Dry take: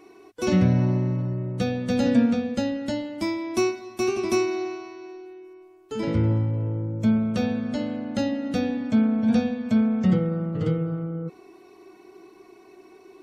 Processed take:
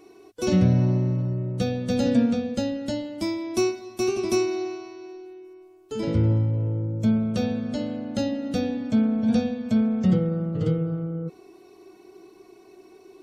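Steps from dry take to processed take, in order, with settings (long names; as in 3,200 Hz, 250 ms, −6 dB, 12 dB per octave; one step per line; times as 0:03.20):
octave-band graphic EQ 250/1,000/2,000 Hz −3/−5/−6 dB
level +2 dB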